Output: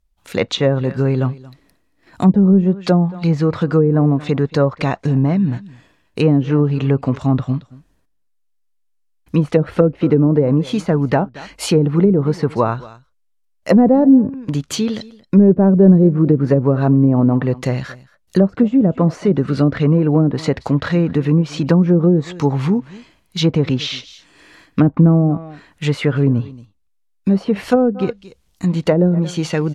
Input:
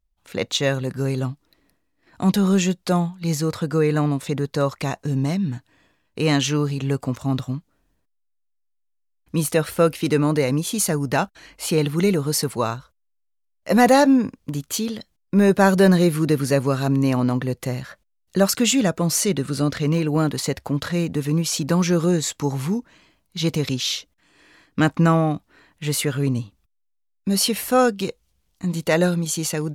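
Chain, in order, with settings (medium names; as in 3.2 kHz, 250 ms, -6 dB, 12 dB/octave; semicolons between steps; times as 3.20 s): echo from a far wall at 39 m, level -21 dB; low-pass that closes with the level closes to 400 Hz, closed at -14 dBFS; trim +7 dB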